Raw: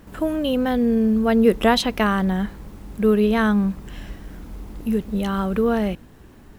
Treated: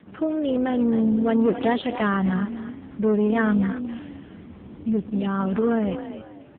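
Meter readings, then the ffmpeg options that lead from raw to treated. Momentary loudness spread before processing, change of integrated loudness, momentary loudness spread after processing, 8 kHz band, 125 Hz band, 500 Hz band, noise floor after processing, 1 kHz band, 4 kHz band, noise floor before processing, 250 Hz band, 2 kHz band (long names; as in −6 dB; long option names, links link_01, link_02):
21 LU, −3.0 dB, 16 LU, below −40 dB, −2.0 dB, −3.5 dB, −45 dBFS, −4.0 dB, −11.0 dB, −46 dBFS, −1.5 dB, −4.0 dB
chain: -filter_complex "[0:a]asoftclip=type=tanh:threshold=-14.5dB,asplit=4[link_01][link_02][link_03][link_04];[link_02]adelay=263,afreqshift=40,volume=-10dB[link_05];[link_03]adelay=526,afreqshift=80,volume=-20.5dB[link_06];[link_04]adelay=789,afreqshift=120,volume=-30.9dB[link_07];[link_01][link_05][link_06][link_07]amix=inputs=4:normalize=0" -ar 8000 -c:a libopencore_amrnb -b:a 5150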